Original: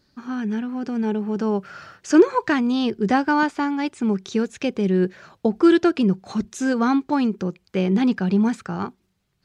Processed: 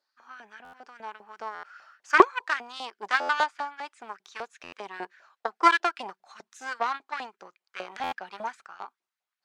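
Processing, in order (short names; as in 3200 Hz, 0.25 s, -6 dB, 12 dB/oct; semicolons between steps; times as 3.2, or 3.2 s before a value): added harmonics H 3 -10 dB, 5 -41 dB, 6 -43 dB, 8 -42 dB, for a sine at -3.5 dBFS; LFO high-pass saw up 5 Hz 660–1800 Hz; stuck buffer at 0.64/1.54/3.2/4.63/8.03, samples 512, times 7; gain +5 dB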